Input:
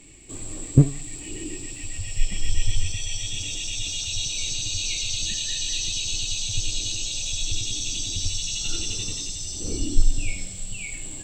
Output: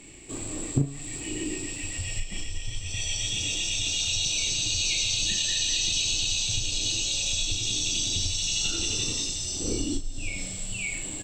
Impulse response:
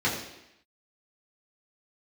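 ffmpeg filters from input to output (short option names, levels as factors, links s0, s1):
-filter_complex "[0:a]highshelf=f=4400:g=-5,acompressor=threshold=0.0794:ratio=16,lowshelf=f=120:g=-8,asplit=2[s0][s1];[s1]adelay=36,volume=0.473[s2];[s0][s2]amix=inputs=2:normalize=0,volume=1.58"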